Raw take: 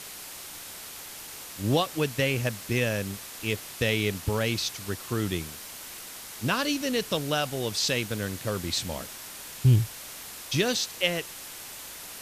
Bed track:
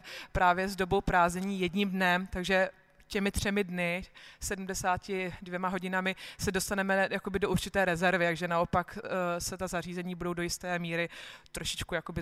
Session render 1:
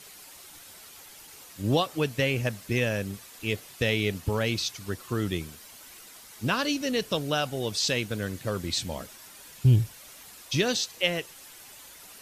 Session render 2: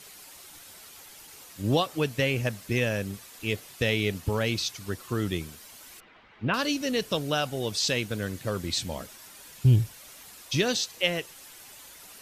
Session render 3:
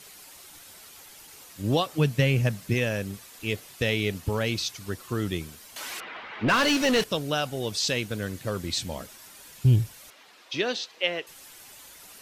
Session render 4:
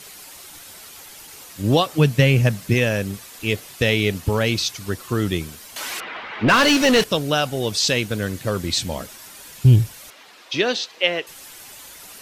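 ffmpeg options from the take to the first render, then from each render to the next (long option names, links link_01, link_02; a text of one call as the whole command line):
ffmpeg -i in.wav -af "afftdn=noise_reduction=9:noise_floor=-42" out.wav
ffmpeg -i in.wav -filter_complex "[0:a]asettb=1/sr,asplit=3[link_01][link_02][link_03];[link_01]atrim=end=6.004[link_04];[link_02]atrim=start=6:end=6.54,asetpts=PTS-STARTPTS,afade=type=in:duration=0.004:curve=qsin,afade=type=out:start_time=0.536:duration=0.004:curve=qsin,lowpass=frequency=2800:width=0.5412,lowpass=frequency=2800:width=1.3066[link_05];[link_03]atrim=start=6.536[link_06];[link_04][link_05]acrossfade=duration=0.004:curve1=hsin:curve2=qsin[link_07];[link_07][link_06]acrossfade=duration=0.004:curve1=qsin:curve2=hsin" out.wav
ffmpeg -i in.wav -filter_complex "[0:a]asettb=1/sr,asplit=3[link_01][link_02][link_03];[link_01]atrim=end=1.984[link_04];[link_02]atrim=start=1.98:end=2.74,asetpts=PTS-STARTPTS,afade=type=in:duration=0.004:curve=qsin,afade=type=out:start_time=0.756:duration=0.004:curve=qsin,equalizer=frequency=150:width=1.6:gain=9.5[link_05];[link_03]atrim=start=2.736[link_06];[link_04][link_05]acrossfade=duration=0.004:curve1=hsin:curve2=qsin[link_07];[link_07][link_06]acrossfade=duration=0.004:curve1=qsin:curve2=hsin,asettb=1/sr,asplit=3[link_08][link_09][link_10];[link_08]atrim=end=5.764[link_11];[link_09]atrim=start=5.76:end=7.04,asetpts=PTS-STARTPTS,afade=type=in:duration=0.004:curve=qsin,afade=type=out:start_time=1.276:duration=0.004:curve=qsin,asplit=2[link_12][link_13];[link_13]highpass=frequency=720:poles=1,volume=24dB,asoftclip=type=tanh:threshold=-13.5dB[link_14];[link_12][link_14]amix=inputs=2:normalize=0,lowpass=frequency=3000:poles=1,volume=-6dB[link_15];[link_10]atrim=start=7.036[link_16];[link_11][link_15]acrossfade=duration=0.004:curve1=hsin:curve2=qsin[link_17];[link_17][link_16]acrossfade=duration=0.004:curve1=qsin:curve2=hsin,asettb=1/sr,asplit=3[link_18][link_19][link_20];[link_18]atrim=end=10.104[link_21];[link_19]atrim=start=10.1:end=11.27,asetpts=PTS-STARTPTS,afade=type=in:duration=0.004:curve=qsin,afade=type=out:start_time=1.166:duration=0.004:curve=qsin,acrossover=split=250 4700:gain=0.112 1 0.112[link_22][link_23][link_24];[link_22][link_23][link_24]amix=inputs=3:normalize=0[link_25];[link_20]atrim=start=11.266[link_26];[link_21][link_25]acrossfade=duration=0.004:curve1=hsin:curve2=qsin[link_27];[link_27][link_26]acrossfade=duration=0.004:curve1=qsin:curve2=hsin" out.wav
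ffmpeg -i in.wav -af "volume=7dB" out.wav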